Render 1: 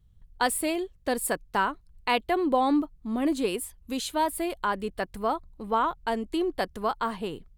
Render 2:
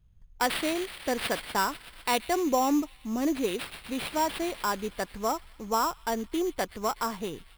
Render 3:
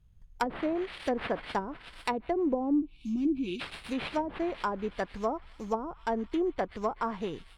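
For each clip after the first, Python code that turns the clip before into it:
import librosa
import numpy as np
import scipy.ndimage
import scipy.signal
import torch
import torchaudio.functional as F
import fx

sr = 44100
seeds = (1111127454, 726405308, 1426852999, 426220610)

y1 = fx.echo_wet_highpass(x, sr, ms=124, feedback_pct=75, hz=4900.0, wet_db=-6.0)
y1 = fx.sample_hold(y1, sr, seeds[0], rate_hz=6500.0, jitter_pct=0)
y1 = F.gain(torch.from_numpy(y1), -1.5).numpy()
y2 = fx.spec_box(y1, sr, start_s=2.81, length_s=0.8, low_hz=370.0, high_hz=2200.0, gain_db=-23)
y2 = fx.env_lowpass_down(y2, sr, base_hz=410.0, full_db=-22.0)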